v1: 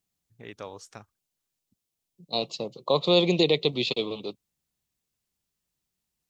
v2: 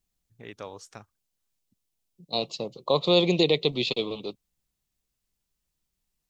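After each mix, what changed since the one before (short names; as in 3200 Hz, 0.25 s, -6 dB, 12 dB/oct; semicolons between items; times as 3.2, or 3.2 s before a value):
second voice: remove HPF 80 Hz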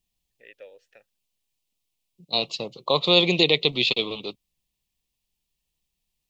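first voice: add vowel filter e; master: add EQ curve 550 Hz 0 dB, 2800 Hz +9 dB, 6300 Hz +2 dB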